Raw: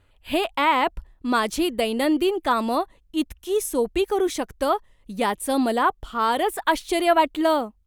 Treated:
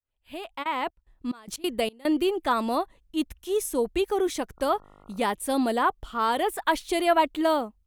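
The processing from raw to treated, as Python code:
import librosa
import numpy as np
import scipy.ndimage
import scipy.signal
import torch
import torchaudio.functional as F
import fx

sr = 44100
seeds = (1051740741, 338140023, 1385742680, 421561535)

y = fx.fade_in_head(x, sr, length_s=1.44)
y = fx.step_gate(y, sr, bpm=183, pattern='.xxx..x.xxx.', floor_db=-24.0, edge_ms=4.5, at=(0.62, 2.15), fade=0.02)
y = fx.dmg_buzz(y, sr, base_hz=50.0, harmonics=28, level_db=-52.0, tilt_db=-1, odd_only=False, at=(4.56, 5.21), fade=0.02)
y = y * librosa.db_to_amplitude(-3.0)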